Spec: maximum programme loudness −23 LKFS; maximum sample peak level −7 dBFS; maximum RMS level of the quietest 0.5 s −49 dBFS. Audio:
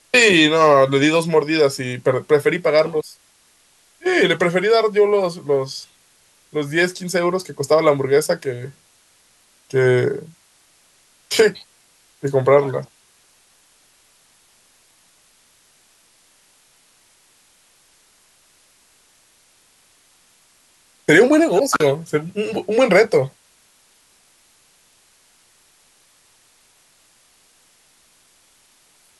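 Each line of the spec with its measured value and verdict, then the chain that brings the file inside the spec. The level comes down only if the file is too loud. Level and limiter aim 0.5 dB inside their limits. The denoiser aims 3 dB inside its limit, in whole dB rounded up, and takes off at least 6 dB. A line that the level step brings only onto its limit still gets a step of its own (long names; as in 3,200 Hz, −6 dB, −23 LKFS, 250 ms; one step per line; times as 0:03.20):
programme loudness −17.0 LKFS: out of spec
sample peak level −2.5 dBFS: out of spec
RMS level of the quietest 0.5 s −56 dBFS: in spec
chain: level −6.5 dB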